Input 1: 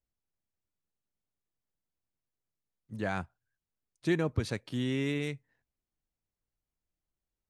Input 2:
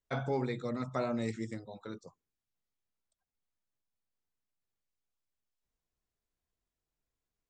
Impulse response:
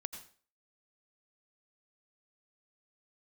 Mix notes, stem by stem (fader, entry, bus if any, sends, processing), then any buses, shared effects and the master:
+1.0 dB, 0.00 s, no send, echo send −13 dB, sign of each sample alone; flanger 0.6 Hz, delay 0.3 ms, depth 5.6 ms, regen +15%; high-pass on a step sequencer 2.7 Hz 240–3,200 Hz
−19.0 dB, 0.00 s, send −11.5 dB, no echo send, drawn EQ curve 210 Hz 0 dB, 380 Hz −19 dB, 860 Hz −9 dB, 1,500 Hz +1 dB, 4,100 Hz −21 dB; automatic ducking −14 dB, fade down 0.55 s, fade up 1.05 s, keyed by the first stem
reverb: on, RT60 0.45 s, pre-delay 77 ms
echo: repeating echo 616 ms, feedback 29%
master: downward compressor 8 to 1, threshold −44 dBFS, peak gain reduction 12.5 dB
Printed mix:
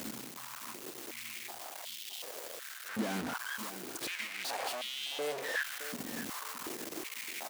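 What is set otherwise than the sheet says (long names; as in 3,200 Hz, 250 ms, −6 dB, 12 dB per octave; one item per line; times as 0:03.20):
stem 1: missing flanger 0.6 Hz, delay 0.3 ms, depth 5.6 ms, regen +15%
master: missing downward compressor 8 to 1, threshold −44 dBFS, peak gain reduction 12.5 dB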